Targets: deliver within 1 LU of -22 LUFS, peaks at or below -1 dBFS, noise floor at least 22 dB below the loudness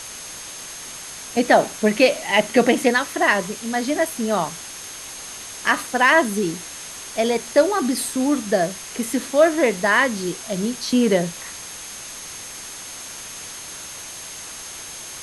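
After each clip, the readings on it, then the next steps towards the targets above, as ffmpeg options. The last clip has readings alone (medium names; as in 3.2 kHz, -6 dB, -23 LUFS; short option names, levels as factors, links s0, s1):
steady tone 6.4 kHz; tone level -38 dBFS; noise floor -36 dBFS; noise floor target -42 dBFS; loudness -20.0 LUFS; peak level -2.5 dBFS; loudness target -22.0 LUFS
-> -af "bandreject=f=6400:w=30"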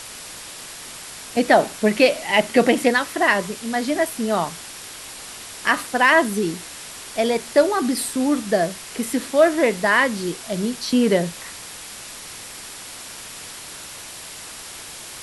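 steady tone not found; noise floor -37 dBFS; noise floor target -42 dBFS
-> -af "afftdn=nr=6:nf=-37"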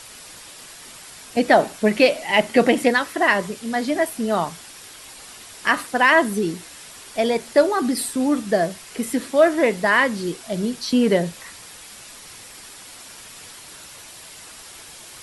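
noise floor -42 dBFS; loudness -20.0 LUFS; peak level -2.5 dBFS; loudness target -22.0 LUFS
-> -af "volume=0.794"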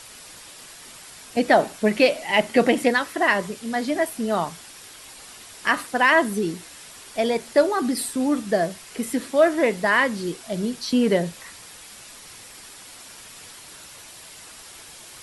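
loudness -22.0 LUFS; peak level -4.5 dBFS; noise floor -44 dBFS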